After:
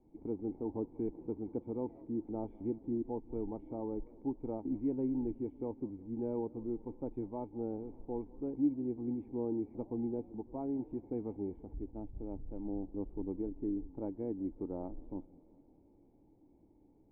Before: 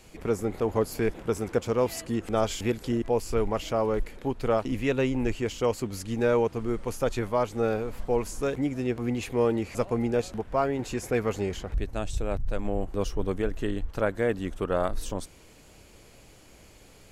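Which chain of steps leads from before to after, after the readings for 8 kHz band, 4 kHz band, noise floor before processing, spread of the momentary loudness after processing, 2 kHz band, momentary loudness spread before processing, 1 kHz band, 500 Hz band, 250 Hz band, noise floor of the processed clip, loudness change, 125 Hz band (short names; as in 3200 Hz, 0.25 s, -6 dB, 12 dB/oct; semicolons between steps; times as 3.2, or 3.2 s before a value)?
under -40 dB, under -40 dB, -53 dBFS, 8 LU, under -40 dB, 6 LU, -17.5 dB, -14.0 dB, -6.0 dB, -65 dBFS, -10.5 dB, -14.5 dB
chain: vocal tract filter u; warbling echo 0.184 s, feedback 68%, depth 176 cents, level -23 dB; gain -1 dB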